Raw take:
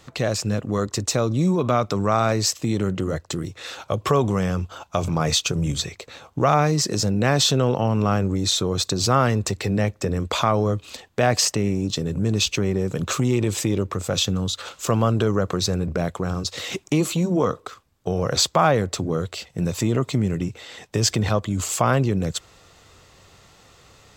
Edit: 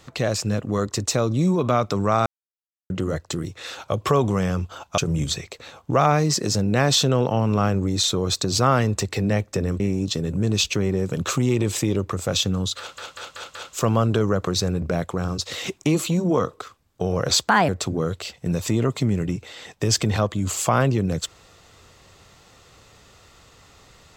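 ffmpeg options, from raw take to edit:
ffmpeg -i in.wav -filter_complex "[0:a]asplit=11[link_01][link_02][link_03][link_04][link_05][link_06][link_07][link_08][link_09][link_10][link_11];[link_01]atrim=end=2.26,asetpts=PTS-STARTPTS,afade=type=out:start_time=2.256:duration=0.004:curve=hsin[link_12];[link_02]atrim=start=2.26:end=2.9,asetpts=PTS-STARTPTS,volume=0[link_13];[link_03]atrim=start=2.9:end=4.982,asetpts=PTS-STARTPTS,afade=type=in:duration=0.004:curve=hsin[link_14];[link_04]atrim=start=5.458:end=10.282[link_15];[link_05]atrim=start=11.618:end=14.802[link_16];[link_06]atrim=start=14.608:end=14.802[link_17];[link_07]atrim=start=14.608:end=14.802[link_18];[link_08]atrim=start=14.608:end=14.802[link_19];[link_09]atrim=start=14.608:end=18.544[link_20];[link_10]atrim=start=18.54:end=18.81,asetpts=PTS-STARTPTS,asetrate=57771,aresample=44100,atrim=end_sample=9089,asetpts=PTS-STARTPTS[link_21];[link_11]atrim=start=18.806[link_22];[link_12][link_13][link_14]concat=n=3:v=0:a=1[link_23];[link_23][link_15]acrossfade=duration=0.004:curve1=hsin:curve2=hsin[link_24];[link_24][link_16]acrossfade=duration=0.004:curve1=hsin:curve2=hsin[link_25];[link_25][link_17]acrossfade=duration=0.004:curve1=hsin:curve2=hsin[link_26];[link_26][link_18]acrossfade=duration=0.004:curve1=hsin:curve2=hsin[link_27];[link_27][link_19]acrossfade=duration=0.004:curve1=hsin:curve2=hsin[link_28];[link_28][link_20]acrossfade=duration=0.004:curve1=hsin:curve2=hsin[link_29];[link_29][link_21]acrossfade=duration=0.004:curve1=hsin:curve2=hsin[link_30];[link_30][link_22]acrossfade=duration=0.004:curve1=hsin:curve2=hsin" out.wav

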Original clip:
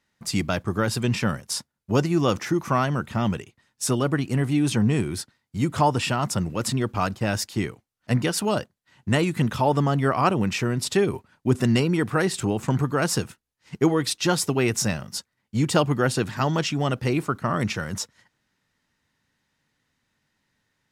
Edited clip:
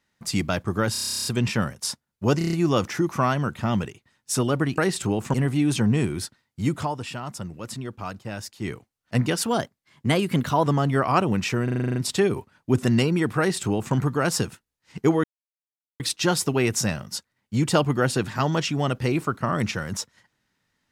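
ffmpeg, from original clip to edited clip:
ffmpeg -i in.wav -filter_complex "[0:a]asplit=32[link_01][link_02][link_03][link_04][link_05][link_06][link_07][link_08][link_09][link_10][link_11][link_12][link_13][link_14][link_15][link_16][link_17][link_18][link_19][link_20][link_21][link_22][link_23][link_24][link_25][link_26][link_27][link_28][link_29][link_30][link_31][link_32];[link_01]atrim=end=0.952[link_33];[link_02]atrim=start=0.918:end=0.952[link_34];[link_03]atrim=start=0.918:end=0.952[link_35];[link_04]atrim=start=0.918:end=0.952[link_36];[link_05]atrim=start=0.918:end=0.952[link_37];[link_06]atrim=start=0.918:end=0.952[link_38];[link_07]atrim=start=0.918:end=0.952[link_39];[link_08]atrim=start=0.918:end=0.952[link_40];[link_09]atrim=start=0.918:end=0.952[link_41];[link_10]atrim=start=0.918:end=0.952[link_42];[link_11]atrim=start=0.918:end=0.952[link_43];[link_12]atrim=start=0.918:end=2.082[link_44];[link_13]atrim=start=2.048:end=2.082[link_45];[link_14]atrim=start=2.048:end=2.082[link_46];[link_15]atrim=start=2.048:end=2.082[link_47];[link_16]atrim=start=2.048:end=2.082[link_48];[link_17]atrim=start=2.048:end=4.302[link_49];[link_18]atrim=start=12.158:end=12.722[link_50];[link_19]atrim=start=4.298:end=5.84,asetpts=PTS-STARTPTS,afade=type=out:start_time=1.412:duration=0.13:silence=0.354813[link_51];[link_20]atrim=start=5.84:end=7.56,asetpts=PTS-STARTPTS,volume=-9dB[link_52];[link_21]atrim=start=7.56:end=8.424,asetpts=PTS-STARTPTS,afade=type=in:duration=0.13:silence=0.354813[link_53];[link_22]atrim=start=8.42:end=9.75,asetpts=PTS-STARTPTS,asetrate=48951,aresample=44100[link_54];[link_23]atrim=start=9.746:end=10.772[link_55];[link_24]atrim=start=10.728:end=10.772[link_56];[link_25]atrim=start=10.728:end=10.772[link_57];[link_26]atrim=start=10.728:end=10.772[link_58];[link_27]atrim=start=10.728:end=10.772[link_59];[link_28]atrim=start=10.728:end=10.772[link_60];[link_29]atrim=start=10.728:end=10.772[link_61];[link_30]atrim=start=10.728:end=10.772[link_62];[link_31]atrim=start=10.728:end=14.01,asetpts=PTS-STARTPTS,afade=type=out:start_time=3.278:duration=0.004:curve=hsin,apad=pad_dur=0.76[link_63];[link_32]atrim=start=14.01,asetpts=PTS-STARTPTS,afade=type=in:duration=0.004:curve=hsin[link_64];[link_33][link_34]acrossfade=duration=0.004:curve1=hsin:curve2=hsin[link_65];[link_65][link_35]acrossfade=duration=0.004:curve1=hsin:curve2=hsin[link_66];[link_66][link_36]acrossfade=duration=0.004:curve1=hsin:curve2=hsin[link_67];[link_67][link_37]acrossfade=duration=0.004:curve1=hsin:curve2=hsin[link_68];[link_68][link_38]acrossfade=duration=0.004:curve1=hsin:curve2=hsin[link_69];[link_69][link_39]acrossfade=duration=0.004:curve1=hsin:curve2=hsin[link_70];[link_70][link_40]acrossfade=duration=0.004:curve1=hsin:curve2=hsin[link_71];[link_71][link_41]acrossfade=duration=0.004:curve1=hsin:curve2=hsin[link_72];[link_72][link_42]acrossfade=duration=0.004:curve1=hsin:curve2=hsin[link_73];[link_73][link_43]acrossfade=duration=0.004:curve1=hsin:curve2=hsin[link_74];[link_74][link_44]acrossfade=duration=0.004:curve1=hsin:curve2=hsin[link_75];[link_75][link_45]acrossfade=duration=0.004:curve1=hsin:curve2=hsin[link_76];[link_76][link_46]acrossfade=duration=0.004:curve1=hsin:curve2=hsin[link_77];[link_77][link_47]acrossfade=duration=0.004:curve1=hsin:curve2=hsin[link_78];[link_78][link_48]acrossfade=duration=0.004:curve1=hsin:curve2=hsin[link_79];[link_79][link_49]acrossfade=duration=0.004:curve1=hsin:curve2=hsin[link_80];[link_80][link_50]acrossfade=duration=0.004:curve1=hsin:curve2=hsin[link_81];[link_51][link_52][link_53]concat=n=3:v=0:a=1[link_82];[link_81][link_82]acrossfade=duration=0.004:curve1=hsin:curve2=hsin[link_83];[link_83][link_54]acrossfade=duration=0.004:curve1=hsin:curve2=hsin[link_84];[link_84][link_55]acrossfade=duration=0.004:curve1=hsin:curve2=hsin[link_85];[link_85][link_56]acrossfade=duration=0.004:curve1=hsin:curve2=hsin[link_86];[link_86][link_57]acrossfade=duration=0.004:curve1=hsin:curve2=hsin[link_87];[link_87][link_58]acrossfade=duration=0.004:curve1=hsin:curve2=hsin[link_88];[link_88][link_59]acrossfade=duration=0.004:curve1=hsin:curve2=hsin[link_89];[link_89][link_60]acrossfade=duration=0.004:curve1=hsin:curve2=hsin[link_90];[link_90][link_61]acrossfade=duration=0.004:curve1=hsin:curve2=hsin[link_91];[link_91][link_62]acrossfade=duration=0.004:curve1=hsin:curve2=hsin[link_92];[link_63][link_64]concat=n=2:v=0:a=1[link_93];[link_92][link_93]acrossfade=duration=0.004:curve1=hsin:curve2=hsin" out.wav

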